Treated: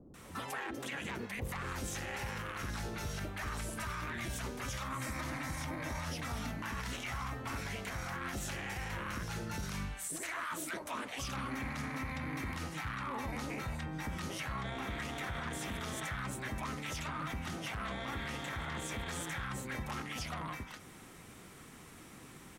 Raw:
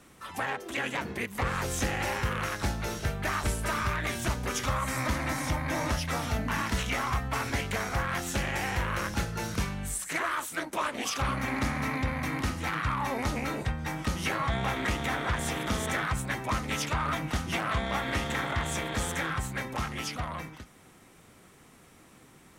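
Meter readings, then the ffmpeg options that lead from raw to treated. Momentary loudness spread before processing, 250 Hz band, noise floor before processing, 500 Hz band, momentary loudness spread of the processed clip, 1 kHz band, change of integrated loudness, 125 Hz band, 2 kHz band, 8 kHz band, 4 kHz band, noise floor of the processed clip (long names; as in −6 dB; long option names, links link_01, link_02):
4 LU, −8.0 dB, −56 dBFS, −10.0 dB, 2 LU, −9.5 dB, −8.5 dB, −8.5 dB, −8.5 dB, −7.5 dB, −8.0 dB, −54 dBFS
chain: -filter_complex "[0:a]acompressor=threshold=-41dB:ratio=2.5,acrossover=split=610[link_01][link_02];[link_02]adelay=140[link_03];[link_01][link_03]amix=inputs=2:normalize=0,alimiter=level_in=9.5dB:limit=-24dB:level=0:latency=1:release=23,volume=-9.5dB,volume=3dB"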